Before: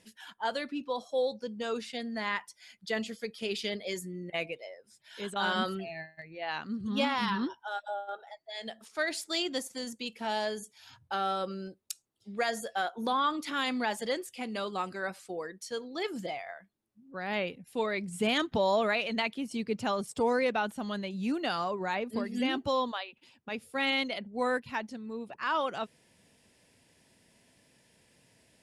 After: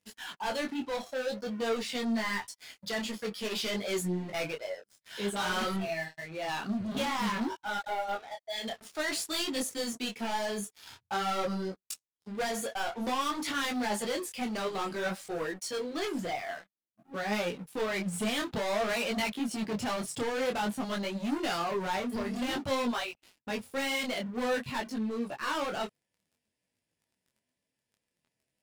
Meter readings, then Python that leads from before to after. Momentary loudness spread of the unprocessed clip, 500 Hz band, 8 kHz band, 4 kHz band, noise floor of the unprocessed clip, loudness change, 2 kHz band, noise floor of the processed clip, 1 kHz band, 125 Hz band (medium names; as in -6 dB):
13 LU, -0.5 dB, +6.0 dB, 0.0 dB, -68 dBFS, 0.0 dB, -0.5 dB, under -85 dBFS, -1.0 dB, +3.0 dB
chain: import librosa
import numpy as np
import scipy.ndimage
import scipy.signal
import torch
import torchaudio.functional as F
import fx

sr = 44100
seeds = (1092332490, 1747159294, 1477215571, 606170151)

y = fx.leveller(x, sr, passes=5)
y = fx.detune_double(y, sr, cents=18)
y = F.gain(torch.from_numpy(y), -7.5).numpy()